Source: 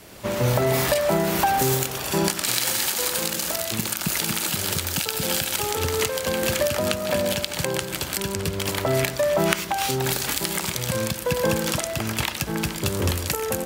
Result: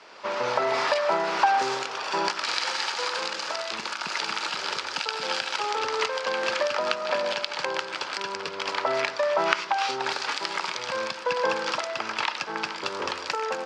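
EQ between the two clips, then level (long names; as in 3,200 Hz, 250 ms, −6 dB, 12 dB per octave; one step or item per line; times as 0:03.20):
loudspeaker in its box 430–5,500 Hz, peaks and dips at 470 Hz +3 dB, 920 Hz +6 dB, 2,500 Hz +3 dB, 4,900 Hz +5 dB
parametric band 1,300 Hz +8 dB 0.86 octaves
−4.5 dB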